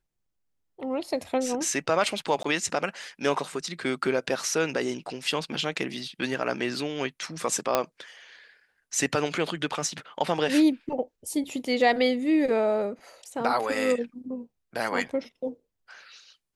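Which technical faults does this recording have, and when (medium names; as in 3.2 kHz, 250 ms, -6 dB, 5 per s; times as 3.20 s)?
2.43–2.44 s: dropout 14 ms
7.75 s: pop -7 dBFS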